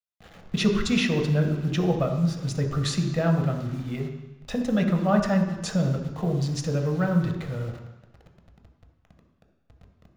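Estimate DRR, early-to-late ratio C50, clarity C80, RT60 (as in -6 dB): 3.5 dB, 6.5 dB, 8.5 dB, 1.1 s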